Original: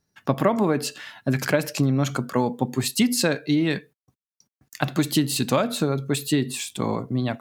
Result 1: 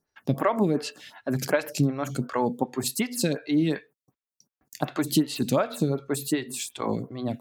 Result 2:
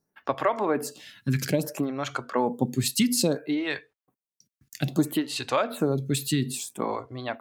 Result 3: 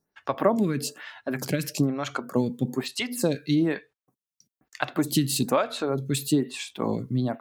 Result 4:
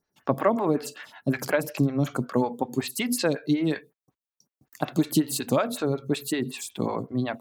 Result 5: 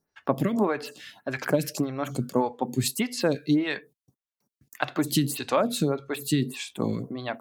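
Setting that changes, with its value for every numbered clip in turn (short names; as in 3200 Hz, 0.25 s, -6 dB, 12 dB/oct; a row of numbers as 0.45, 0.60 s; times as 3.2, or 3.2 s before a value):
photocell phaser, rate: 2.7, 0.6, 1.1, 5.4, 1.7 Hz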